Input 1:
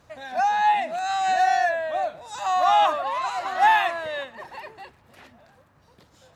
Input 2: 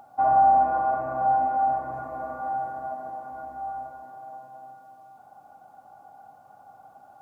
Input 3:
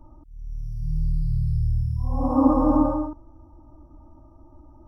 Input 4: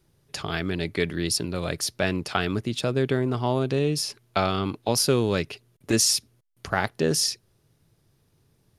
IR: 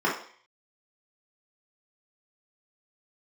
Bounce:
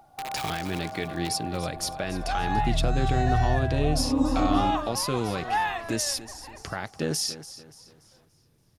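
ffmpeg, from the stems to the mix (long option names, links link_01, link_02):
-filter_complex "[0:a]adelay=1900,volume=-8.5dB[link_01];[1:a]acompressor=threshold=-32dB:ratio=2.5,aeval=exprs='(mod(15*val(0)+1,2)-1)/15':channel_layout=same,volume=-5.5dB,asplit=2[link_02][link_03];[link_03]volume=-8dB[link_04];[2:a]lowshelf=frequency=390:gain=11,adelay=1750,volume=-13dB[link_05];[3:a]bandreject=frequency=410:width=12,alimiter=limit=-16.5dB:level=0:latency=1:release=262,volume=-0.5dB,asplit=2[link_06][link_07];[link_07]volume=-15dB[link_08];[link_04][link_08]amix=inputs=2:normalize=0,aecho=0:1:288|576|864|1152|1440:1|0.39|0.152|0.0593|0.0231[link_09];[link_01][link_02][link_05][link_06][link_09]amix=inputs=5:normalize=0"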